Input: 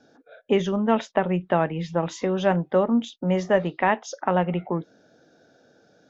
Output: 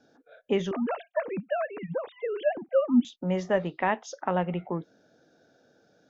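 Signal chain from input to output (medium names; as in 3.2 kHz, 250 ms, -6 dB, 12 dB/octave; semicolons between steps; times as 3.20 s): 0.71–3.05 s: formants replaced by sine waves; trim -5 dB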